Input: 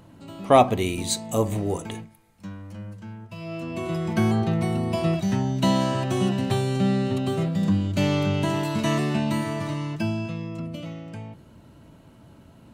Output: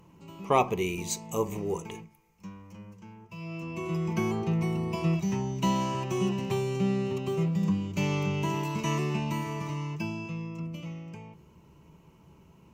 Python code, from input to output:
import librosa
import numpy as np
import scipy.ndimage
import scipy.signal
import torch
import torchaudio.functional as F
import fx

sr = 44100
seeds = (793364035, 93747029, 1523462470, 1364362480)

y = fx.ripple_eq(x, sr, per_octave=0.77, db=11)
y = F.gain(torch.from_numpy(y), -7.0).numpy()